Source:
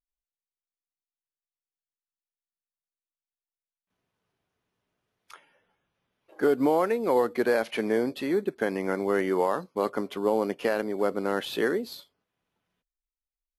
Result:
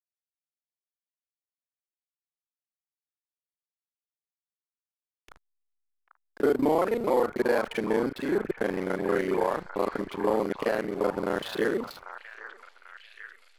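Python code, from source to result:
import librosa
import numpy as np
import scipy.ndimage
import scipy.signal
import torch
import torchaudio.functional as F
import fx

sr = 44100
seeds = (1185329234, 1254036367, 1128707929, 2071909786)

y = fx.local_reverse(x, sr, ms=32.0)
y = fx.backlash(y, sr, play_db=-35.5)
y = fx.echo_stepped(y, sr, ms=793, hz=1200.0, octaves=0.7, feedback_pct=70, wet_db=-6)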